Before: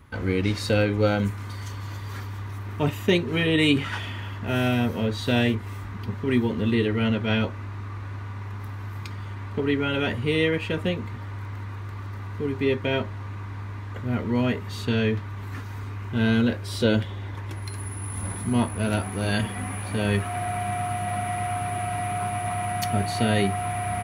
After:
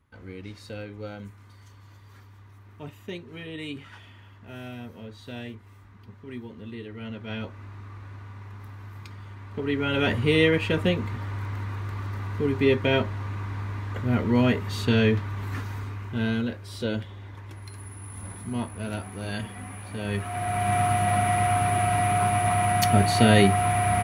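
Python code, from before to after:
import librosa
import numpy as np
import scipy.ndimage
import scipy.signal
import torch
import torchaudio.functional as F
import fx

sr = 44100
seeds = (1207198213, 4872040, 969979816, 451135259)

y = fx.gain(x, sr, db=fx.line((6.85, -16.0), (7.65, -7.0), (9.46, -7.0), (10.09, 2.5), (15.63, 2.5), (16.52, -7.5), (20.01, -7.5), (20.76, 5.0)))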